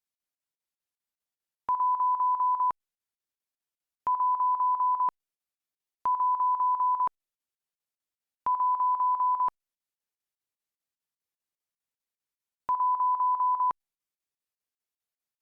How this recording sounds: chopped level 5 Hz, depth 65%, duty 75%; Opus

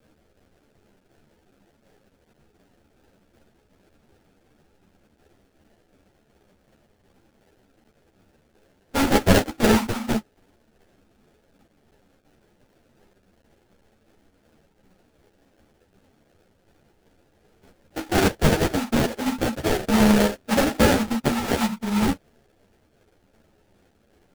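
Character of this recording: a quantiser's noise floor 10-bit, dither triangular; tremolo saw down 2.7 Hz, depth 40%; aliases and images of a low sample rate 1.1 kHz, jitter 20%; a shimmering, thickened sound

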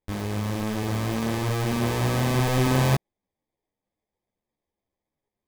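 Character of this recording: aliases and images of a low sample rate 1.4 kHz, jitter 0%; a shimmering, thickened sound

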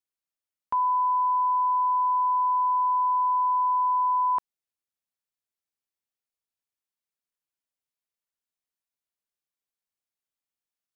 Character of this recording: noise floor -92 dBFS; spectral tilt -2.5 dB/octave

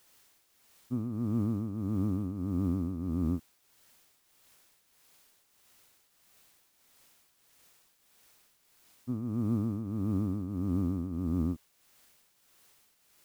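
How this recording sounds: a quantiser's noise floor 10-bit, dither triangular; tremolo triangle 1.6 Hz, depth 65%

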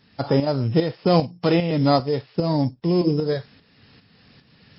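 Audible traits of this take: a buzz of ramps at a fixed pitch in blocks of 8 samples; tremolo saw up 2.5 Hz, depth 65%; MP3

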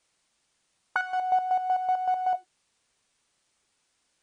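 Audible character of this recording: chopped level 5.3 Hz, depth 60%, duty 35%; a quantiser's noise floor 12-bit, dither triangular; MP3

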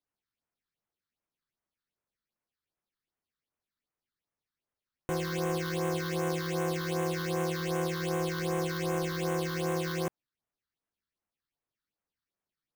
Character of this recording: aliases and images of a low sample rate 7.5 kHz, jitter 0%; phasing stages 6, 2.6 Hz, lowest notch 640–4500 Hz

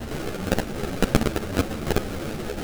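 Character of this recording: a quantiser's noise floor 6-bit, dither triangular; phasing stages 12, 2.1 Hz, lowest notch 790–1800 Hz; aliases and images of a low sample rate 1 kHz, jitter 20%; a shimmering, thickened sound

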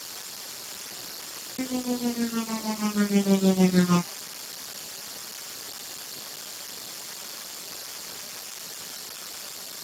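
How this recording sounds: phasing stages 8, 0.66 Hz, lowest notch 410–1700 Hz; tremolo triangle 6.4 Hz, depth 95%; a quantiser's noise floor 8-bit, dither triangular; Speex

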